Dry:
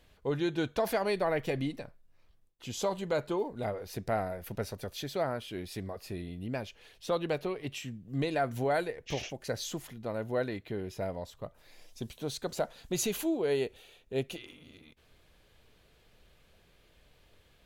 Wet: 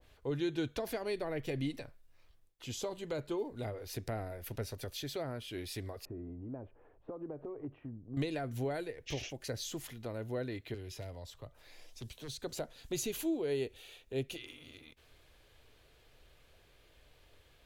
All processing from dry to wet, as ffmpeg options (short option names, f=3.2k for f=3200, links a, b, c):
-filter_complex "[0:a]asettb=1/sr,asplit=3[a][b][c];[a]atrim=end=6.054[d];[b]atrim=start=6.05:end=8.17,asetpts=PTS-STARTPTS,afade=t=in:d=0.004:c=qsin,afade=t=out:st=2.116:d=0.004:c=qsin,lowpass=f=1.1k:w=0.5412,lowpass=f=1.1k:w=1.3066,acompressor=threshold=-39dB:ratio=4:attack=3.2:release=140:knee=1:detection=peak,equalizer=f=290:w=2.6:g=5.5[e];[c]atrim=start=8.166[f];[d][e]acrossfade=d=0.004:c1=hsin:c2=qsin[g];[g][f]acrossfade=d=0.004:c1=qsin:c2=hsin,asettb=1/sr,asplit=3[h][i][j];[h]atrim=end=10.744[k];[i]atrim=start=10.74:end=12.4,asetpts=PTS-STARTPTS,afade=t=in:d=0.004:c=qsin,afade=t=out:st=1.656:d=0.004:c=qsin,aeval=exprs='0.0422*(abs(mod(val(0)/0.0422+3,4)-2)-1)':c=same,highshelf=f=6.7k:g=-5,acrossover=split=150|3000[l][m][n];[m]acompressor=threshold=-58dB:ratio=1.5:attack=3.2:release=140:knee=2.83:detection=peak[o];[l][o][n]amix=inputs=3:normalize=0[p];[j]atrim=start=12.396[q];[k][p]acrossfade=d=0.004:c1=hsin:c2=qsin[r];[r][q]acrossfade=d=0.004:c1=qsin:c2=hsin,equalizer=f=190:t=o:w=0.35:g=-13,acrossover=split=400[s][t];[t]acompressor=threshold=-50dB:ratio=2.5[u];[s][u]amix=inputs=2:normalize=0,adynamicequalizer=threshold=0.00178:dfrequency=1500:dqfactor=0.7:tfrequency=1500:tqfactor=0.7:attack=5:release=100:ratio=0.375:range=3.5:mode=boostabove:tftype=highshelf"